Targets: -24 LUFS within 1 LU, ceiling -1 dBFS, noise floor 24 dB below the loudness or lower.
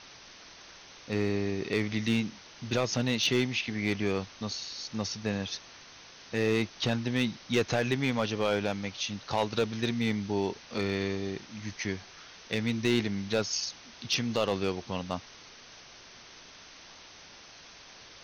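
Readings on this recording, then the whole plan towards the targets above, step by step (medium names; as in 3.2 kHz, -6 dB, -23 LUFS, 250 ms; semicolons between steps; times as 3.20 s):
clipped samples 0.3%; clipping level -18.5 dBFS; noise floor -51 dBFS; noise floor target -55 dBFS; loudness -31.0 LUFS; peak level -18.5 dBFS; loudness target -24.0 LUFS
-> clip repair -18.5 dBFS; noise reduction 6 dB, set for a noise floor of -51 dBFS; trim +7 dB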